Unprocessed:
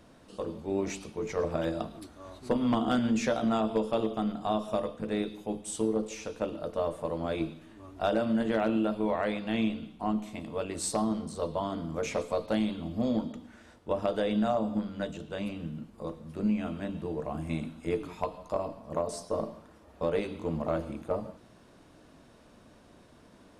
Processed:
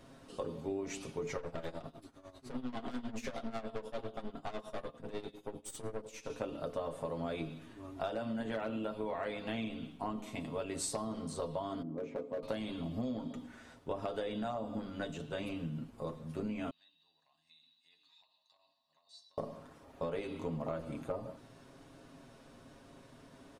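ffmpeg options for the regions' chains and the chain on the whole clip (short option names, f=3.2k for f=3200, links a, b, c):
-filter_complex "[0:a]asettb=1/sr,asplit=3[a][b][c];[a]atrim=end=1.374[d];[b]atrim=start=1.37:end=6.3,asetpts=PTS-STARTPTS,afade=t=in:d=0.004:c=qsin,afade=t=out:st=4.926:d=0.004:c=qsin,aeval=exprs='(tanh(35.5*val(0)+0.75)-tanh(0.75))/35.5':c=same,tremolo=f=10:d=0.83[e];[c]atrim=start=6.296[f];[d][e]acrossfade=d=0.004:c1=hsin:c2=qsin[g];[g][f]acrossfade=d=0.004:c1=qsin:c2=hsin,asettb=1/sr,asplit=3[h][i][j];[h]atrim=end=11.824[k];[i]atrim=start=11.82:end=12.43,asetpts=PTS-STARTPTS,afade=t=in:d=0.004:c=qsin,afade=t=out:st=0.606:d=0.004:c=qsin,bandpass=f=310:t=q:w=1.6,asoftclip=type=hard:threshold=-30.5dB[l];[j]atrim=start=12.426[m];[k][l]acrossfade=d=0.004:c1=hsin:c2=qsin[n];[n][m]acrossfade=d=0.004:c1=qsin:c2=hsin,asettb=1/sr,asplit=3[o][p][q];[o]atrim=end=16.704[r];[p]atrim=start=16.7:end=19.38,asetpts=PTS-STARTPTS,afade=t=in:d=0.004:c=qsin,afade=t=out:st=2.676:d=0.004:c=qsin,aecho=1:1:1.1:0.73,atrim=end_sample=118188,acompressor=threshold=-32dB:ratio=6:attack=3.2:release=140:knee=1:detection=peak,bandpass=f=4k:t=q:w=13[s];[q]atrim=start=19.376[t];[r][s]acrossfade=d=0.004:c1=hsin:c2=qsin[u];[u][t]acrossfade=d=0.004:c1=qsin:c2=hsin,aecho=1:1:7.4:0.61,acompressor=threshold=-33dB:ratio=6,volume=-1.5dB"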